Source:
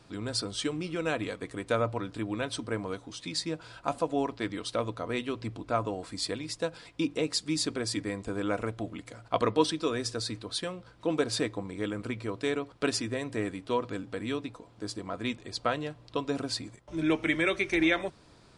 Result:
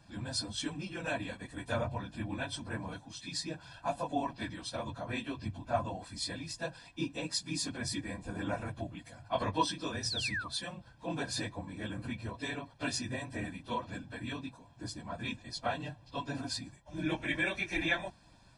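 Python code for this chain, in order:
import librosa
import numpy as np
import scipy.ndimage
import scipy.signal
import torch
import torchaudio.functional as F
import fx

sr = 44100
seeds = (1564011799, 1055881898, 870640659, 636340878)

y = fx.phase_scramble(x, sr, seeds[0], window_ms=50)
y = fx.spec_paint(y, sr, seeds[1], shape='fall', start_s=10.03, length_s=0.45, low_hz=1100.0, high_hz=6000.0, level_db=-33.0)
y = y + 0.72 * np.pad(y, (int(1.2 * sr / 1000.0), 0))[:len(y)]
y = y * librosa.db_to_amplitude(-5.5)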